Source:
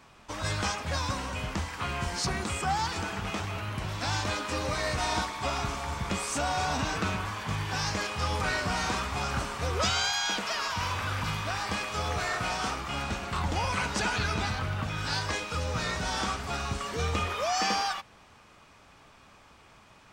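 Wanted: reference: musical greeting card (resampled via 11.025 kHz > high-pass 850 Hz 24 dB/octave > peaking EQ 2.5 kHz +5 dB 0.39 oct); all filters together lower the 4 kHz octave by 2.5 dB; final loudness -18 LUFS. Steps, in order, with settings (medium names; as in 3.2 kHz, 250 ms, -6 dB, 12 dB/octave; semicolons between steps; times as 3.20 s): peaking EQ 4 kHz -4.5 dB; resampled via 11.025 kHz; high-pass 850 Hz 24 dB/octave; peaking EQ 2.5 kHz +5 dB 0.39 oct; trim +15 dB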